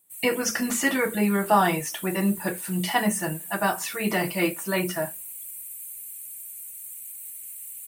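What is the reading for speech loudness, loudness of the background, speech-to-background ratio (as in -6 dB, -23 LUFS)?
-25.5 LUFS, -36.0 LUFS, 10.5 dB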